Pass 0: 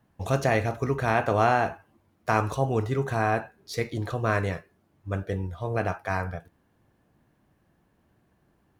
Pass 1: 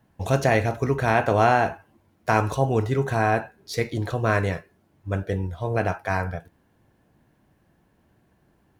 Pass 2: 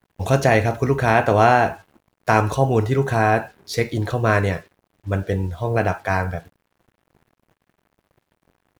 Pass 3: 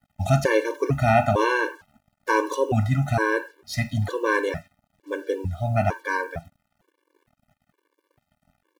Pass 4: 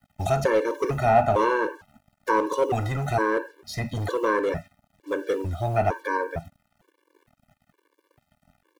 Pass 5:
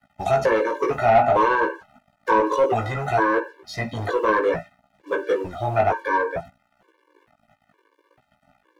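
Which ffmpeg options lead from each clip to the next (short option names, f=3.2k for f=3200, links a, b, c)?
-af "bandreject=f=1.2k:w=13,volume=3.5dB"
-af "acrusher=bits=8:mix=0:aa=0.5,volume=4dB"
-af "afftfilt=real='re*gt(sin(2*PI*1.1*pts/sr)*(1-2*mod(floor(b*sr/1024/300),2)),0)':imag='im*gt(sin(2*PI*1.1*pts/sr)*(1-2*mod(floor(b*sr/1024/300),2)),0)':win_size=1024:overlap=0.75"
-filter_complex "[0:a]acrossover=split=520|1100[a][b][c];[a]volume=30dB,asoftclip=hard,volume=-30dB[d];[c]acompressor=threshold=-40dB:ratio=4[e];[d][b][e]amix=inputs=3:normalize=0,volume=3.5dB"
-filter_complex "[0:a]flanger=delay=15:depth=3.5:speed=0.59,asplit=2[a][b];[b]highpass=f=720:p=1,volume=14dB,asoftclip=type=tanh:threshold=-9dB[c];[a][c]amix=inputs=2:normalize=0,lowpass=f=1.7k:p=1,volume=-6dB,volume=3dB"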